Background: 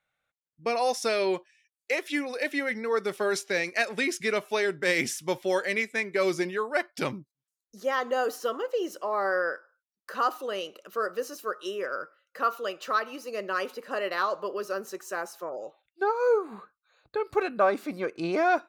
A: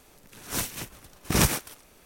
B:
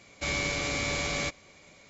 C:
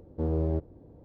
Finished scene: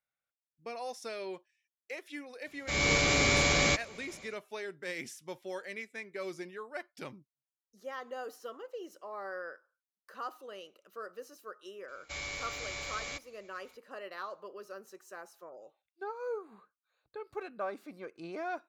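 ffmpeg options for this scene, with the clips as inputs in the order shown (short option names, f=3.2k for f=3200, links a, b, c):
-filter_complex "[2:a]asplit=2[a][b];[0:a]volume=-14dB[c];[a]dynaudnorm=f=220:g=3:m=11dB[d];[b]equalizer=f=210:t=o:w=1.9:g=-11.5[e];[d]atrim=end=1.89,asetpts=PTS-STARTPTS,volume=-6.5dB,afade=t=in:d=0.004:c=hsin,afade=t=out:st=1.886:d=0.004:c=hsin,adelay=2460[f];[e]atrim=end=1.89,asetpts=PTS-STARTPTS,volume=-8.5dB,afade=t=in:d=0.004:c=hsin,afade=t=out:st=1.886:d=0.004:c=hsin,adelay=11880[g];[c][f][g]amix=inputs=3:normalize=0"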